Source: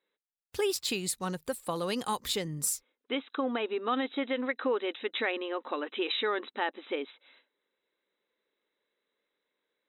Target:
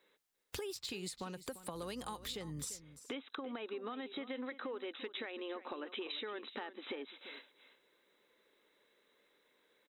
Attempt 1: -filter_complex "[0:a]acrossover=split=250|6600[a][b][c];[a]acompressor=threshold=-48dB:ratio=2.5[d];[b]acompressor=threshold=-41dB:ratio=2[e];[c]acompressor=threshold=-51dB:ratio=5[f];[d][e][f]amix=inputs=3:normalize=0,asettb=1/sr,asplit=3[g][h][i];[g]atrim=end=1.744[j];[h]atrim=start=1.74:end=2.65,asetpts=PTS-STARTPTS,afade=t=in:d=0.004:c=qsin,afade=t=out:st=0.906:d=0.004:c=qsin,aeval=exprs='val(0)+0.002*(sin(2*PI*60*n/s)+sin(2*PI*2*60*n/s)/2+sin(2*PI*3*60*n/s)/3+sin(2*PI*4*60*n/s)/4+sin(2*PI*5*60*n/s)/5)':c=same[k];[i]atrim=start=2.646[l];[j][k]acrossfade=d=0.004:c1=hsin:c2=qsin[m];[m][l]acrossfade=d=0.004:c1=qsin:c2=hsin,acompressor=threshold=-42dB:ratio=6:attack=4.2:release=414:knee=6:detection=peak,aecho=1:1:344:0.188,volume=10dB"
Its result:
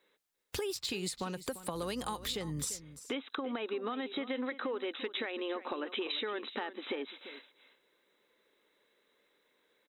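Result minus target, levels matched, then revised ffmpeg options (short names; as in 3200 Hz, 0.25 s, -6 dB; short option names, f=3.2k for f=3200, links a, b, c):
compressor: peak gain reduction -6 dB
-filter_complex "[0:a]acrossover=split=250|6600[a][b][c];[a]acompressor=threshold=-48dB:ratio=2.5[d];[b]acompressor=threshold=-41dB:ratio=2[e];[c]acompressor=threshold=-51dB:ratio=5[f];[d][e][f]amix=inputs=3:normalize=0,asettb=1/sr,asplit=3[g][h][i];[g]atrim=end=1.744[j];[h]atrim=start=1.74:end=2.65,asetpts=PTS-STARTPTS,afade=t=in:d=0.004:c=qsin,afade=t=out:st=0.906:d=0.004:c=qsin,aeval=exprs='val(0)+0.002*(sin(2*PI*60*n/s)+sin(2*PI*2*60*n/s)/2+sin(2*PI*3*60*n/s)/3+sin(2*PI*4*60*n/s)/4+sin(2*PI*5*60*n/s)/5)':c=same[k];[i]atrim=start=2.646[l];[j][k]acrossfade=d=0.004:c1=hsin:c2=qsin[m];[m][l]acrossfade=d=0.004:c1=qsin:c2=hsin,acompressor=threshold=-49.5dB:ratio=6:attack=4.2:release=414:knee=6:detection=peak,aecho=1:1:344:0.188,volume=10dB"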